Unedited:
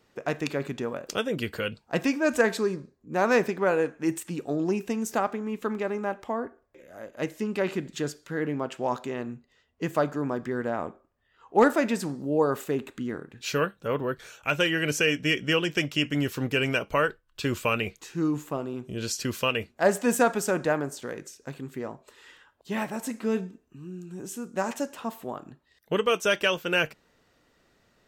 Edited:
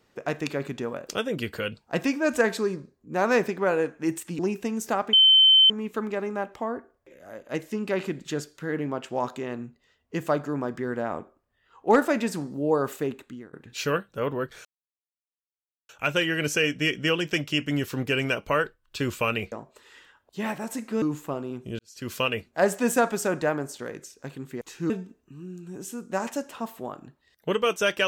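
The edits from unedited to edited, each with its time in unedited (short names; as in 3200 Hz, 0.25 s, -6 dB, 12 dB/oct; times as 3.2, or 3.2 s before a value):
4.39–4.64 cut
5.38 add tone 3080 Hz -12.5 dBFS 0.57 s
12.7–13.21 fade out, to -19.5 dB
14.33 insert silence 1.24 s
17.96–18.25 swap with 21.84–23.34
19.02–19.36 fade in quadratic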